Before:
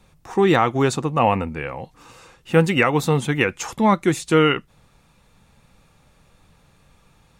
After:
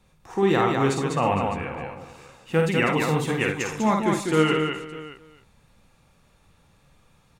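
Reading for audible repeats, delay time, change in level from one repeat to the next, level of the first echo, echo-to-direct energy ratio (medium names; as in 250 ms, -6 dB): 7, 51 ms, no regular repeats, -4.0 dB, 0.0 dB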